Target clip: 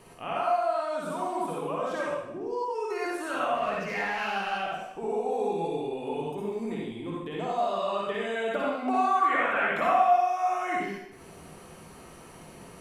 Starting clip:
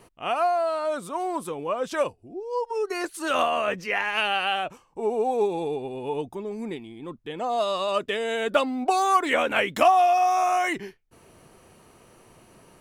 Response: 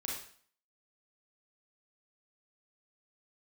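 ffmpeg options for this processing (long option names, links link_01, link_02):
-filter_complex "[0:a]acrossover=split=2500[link_01][link_02];[link_02]acompressor=threshold=-44dB:ratio=4:attack=1:release=60[link_03];[link_01][link_03]amix=inputs=2:normalize=0,asettb=1/sr,asplit=3[link_04][link_05][link_06];[link_04]atrim=end=8.634[link_07];[link_05]atrim=start=8.63:end=10.08,asetpts=PTS-STARTPTS,afade=type=in:duration=0.004:curve=qsin,afade=type=out:start_time=1.446:duration=0.004:curve=qsin,equalizer=frequency=1400:width_type=o:width=1.6:gain=9.5[link_08];[link_06]atrim=start=10.076[link_09];[link_07][link_08]acrossfade=duration=0.004:curve1=hsin:curve2=qsin[link_10];[link_10][link_09]acrossfade=duration=0.004:curve1=qsin:curve2=hsin,acompressor=threshold=-39dB:ratio=2,asettb=1/sr,asplit=3[link_11][link_12][link_13];[link_11]atrim=end=3.554[link_14];[link_12]atrim=start=3.55:end=4.52,asetpts=PTS-STARTPTS,afade=type=in:duration=0.004:curve=qsin,afade=type=out:start_time=0.966:duration=0.004:curve=qsin,aeval=exprs='clip(val(0),-1,0.0316)':channel_layout=same[link_15];[link_13]atrim=start=4.516[link_16];[link_14][link_15]acrossfade=duration=0.004:curve1=hsin:curve2=qsin[link_17];[link_17][link_16]acrossfade=duration=0.004:curve1=qsin:curve2=hsin[link_18];[1:a]atrim=start_sample=2205,asetrate=27783,aresample=44100[link_19];[link_18][link_19]afir=irnorm=-1:irlink=0,volume=1dB"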